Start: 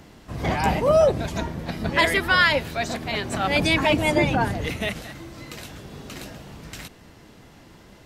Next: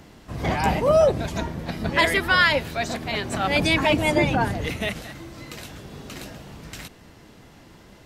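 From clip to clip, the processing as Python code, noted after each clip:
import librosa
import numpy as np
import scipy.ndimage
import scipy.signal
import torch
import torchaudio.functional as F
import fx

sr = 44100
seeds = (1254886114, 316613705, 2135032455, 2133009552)

y = x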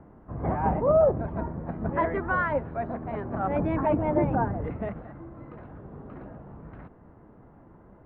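y = scipy.signal.sosfilt(scipy.signal.butter(4, 1300.0, 'lowpass', fs=sr, output='sos'), x)
y = F.gain(torch.from_numpy(y), -3.0).numpy()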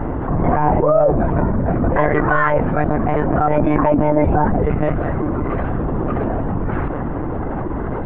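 y = fx.lpc_monotone(x, sr, seeds[0], pitch_hz=150.0, order=16)
y = fx.env_flatten(y, sr, amount_pct=70)
y = F.gain(torch.from_numpy(y), 5.0).numpy()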